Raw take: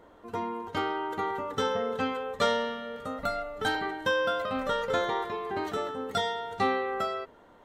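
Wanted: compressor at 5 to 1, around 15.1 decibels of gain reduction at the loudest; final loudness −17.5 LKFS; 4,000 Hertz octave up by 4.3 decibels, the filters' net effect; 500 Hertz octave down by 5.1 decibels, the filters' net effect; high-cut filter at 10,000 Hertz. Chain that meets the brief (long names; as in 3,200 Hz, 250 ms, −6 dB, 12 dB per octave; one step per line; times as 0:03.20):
low-pass filter 10,000 Hz
parametric band 500 Hz −6 dB
parametric band 4,000 Hz +5.5 dB
downward compressor 5 to 1, threshold −41 dBFS
level +25.5 dB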